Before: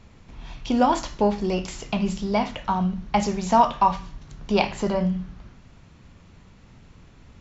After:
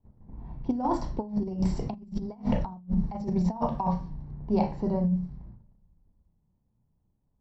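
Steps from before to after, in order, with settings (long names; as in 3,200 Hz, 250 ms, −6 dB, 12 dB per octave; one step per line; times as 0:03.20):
source passing by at 0:02.40, 6 m/s, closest 2.7 metres
surface crackle 470 per second −56 dBFS
spectral tilt −1.5 dB per octave
noise gate −56 dBFS, range −18 dB
convolution reverb RT60 0.20 s, pre-delay 31 ms, DRR 6.5 dB
low-pass that shuts in the quiet parts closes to 1,200 Hz, open at −20 dBFS
compressor whose output falls as the input rises −21 dBFS, ratio −0.5
high-shelf EQ 3,500 Hz −9 dB
level −6.5 dB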